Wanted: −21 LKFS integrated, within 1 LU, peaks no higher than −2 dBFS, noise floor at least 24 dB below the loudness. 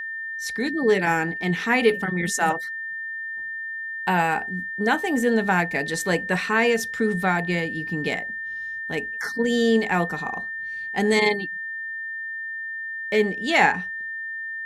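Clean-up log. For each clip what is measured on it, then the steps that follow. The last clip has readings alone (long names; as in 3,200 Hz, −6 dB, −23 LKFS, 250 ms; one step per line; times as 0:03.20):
interfering tone 1,800 Hz; level of the tone −29 dBFS; integrated loudness −24.0 LKFS; sample peak −5.0 dBFS; target loudness −21.0 LKFS
→ notch filter 1,800 Hz, Q 30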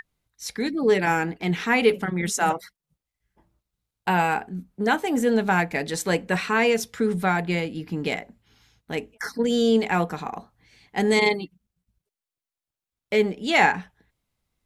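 interfering tone none found; integrated loudness −23.5 LKFS; sample peak −5.0 dBFS; target loudness −21.0 LKFS
→ level +2.5 dB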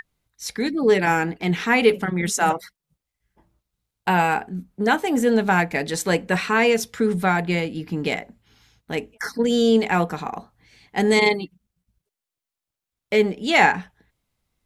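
integrated loudness −21.0 LKFS; sample peak −2.5 dBFS; background noise floor −87 dBFS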